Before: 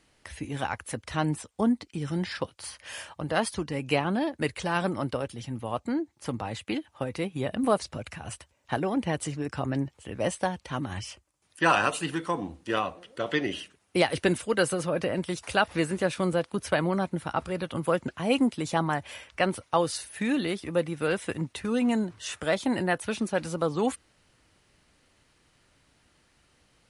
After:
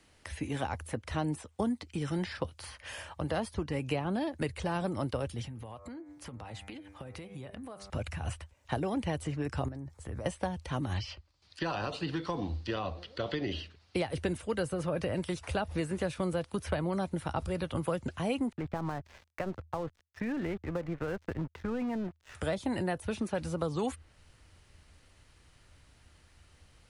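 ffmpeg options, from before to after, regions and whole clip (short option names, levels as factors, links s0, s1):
-filter_complex "[0:a]asettb=1/sr,asplit=3[s0][s1][s2];[s0]atrim=end=5.474[s3];[s1]atrim=start=5.47:end=7.9,asetpts=PTS-STARTPTS,afade=t=in:d=0.004:c=qsin,afade=t=out:st=2.426:d=0.004:c=qsin,bandreject=f=98.62:t=h:w=4,bandreject=f=197.24:t=h:w=4,bandreject=f=295.86:t=h:w=4,bandreject=f=394.48:t=h:w=4,bandreject=f=493.1:t=h:w=4,bandreject=f=591.72:t=h:w=4,bandreject=f=690.34:t=h:w=4,bandreject=f=788.96:t=h:w=4,bandreject=f=887.58:t=h:w=4,bandreject=f=986.2:t=h:w=4,bandreject=f=1084.82:t=h:w=4,bandreject=f=1183.44:t=h:w=4,bandreject=f=1282.06:t=h:w=4,bandreject=f=1380.68:t=h:w=4,bandreject=f=1479.3:t=h:w=4,bandreject=f=1577.92:t=h:w=4,bandreject=f=1676.54:t=h:w=4,bandreject=f=1775.16:t=h:w=4,bandreject=f=1873.78:t=h:w=4,bandreject=f=1972.4:t=h:w=4,bandreject=f=2071.02:t=h:w=4,bandreject=f=2169.64:t=h:w=4,bandreject=f=2268.26:t=h:w=4,bandreject=f=2366.88:t=h:w=4,bandreject=f=2465.5:t=h:w=4,acompressor=threshold=0.00891:ratio=10:attack=3.2:release=140:knee=1:detection=peak,highpass=43[s4];[s2]atrim=start=7.896[s5];[s3][s4]acrossfade=d=0.004:c1=hsin:c2=qsin[s6];[s6][s5]acrossfade=d=0.004:c1=qsin:c2=hsin,asettb=1/sr,asplit=3[s7][s8][s9];[s7]atrim=end=9.684[s10];[s8]atrim=start=9.68:end=10.26,asetpts=PTS-STARTPTS,afade=t=in:d=0.004:c=qsin,afade=t=out:st=0.576:d=0.004:c=qsin,equalizer=f=2900:w=2.4:g=-14.5,acompressor=threshold=0.0141:ratio=12:attack=3.2:release=140:knee=1:detection=peak[s11];[s9]atrim=start=10.256[s12];[s10][s11]acrossfade=d=0.004:c1=hsin:c2=qsin[s13];[s13][s12]acrossfade=d=0.004:c1=qsin:c2=hsin,asettb=1/sr,asplit=3[s14][s15][s16];[s14]atrim=end=10.944[s17];[s15]atrim=start=10.94:end=13.96,asetpts=PTS-STARTPTS,afade=t=in:d=0.004:c=qsin,afade=t=out:st=3.016:d=0.004:c=qsin,acompressor=threshold=0.0501:ratio=2.5:attack=3.2:release=140:knee=1:detection=peak,lowpass=f=4500:t=q:w=4.6[s18];[s16]atrim=start=13.956[s19];[s17][s18]acrossfade=d=0.004:c1=hsin:c2=qsin[s20];[s20][s19]acrossfade=d=0.004:c1=qsin:c2=hsin,asettb=1/sr,asplit=3[s21][s22][s23];[s21]atrim=end=18.524[s24];[s22]atrim=start=18.52:end=22.35,asetpts=PTS-STARTPTS,afade=t=in:d=0.004:c=qsin,afade=t=out:st=3.826:d=0.004:c=qsin,lowpass=f=2000:w=0.5412,lowpass=f=2000:w=1.3066,acompressor=threshold=0.0447:ratio=6:attack=3.2:release=140:knee=1:detection=peak,aeval=exprs='sgn(val(0))*max(abs(val(0))-0.00473,0)':c=same[s25];[s23]atrim=start=22.346[s26];[s24][s25]acrossfade=d=0.004:c1=hsin:c2=qsin[s27];[s27][s26]acrossfade=d=0.004:c1=qsin:c2=hsin,equalizer=f=80:w=7.6:g=9.5,acrossover=split=210|860|3200[s28][s29][s30][s31];[s28]acompressor=threshold=0.0112:ratio=4[s32];[s29]acompressor=threshold=0.0251:ratio=4[s33];[s30]acompressor=threshold=0.00562:ratio=4[s34];[s31]acompressor=threshold=0.00282:ratio=4[s35];[s32][s33][s34][s35]amix=inputs=4:normalize=0,asubboost=boost=2.5:cutoff=120,volume=1.12"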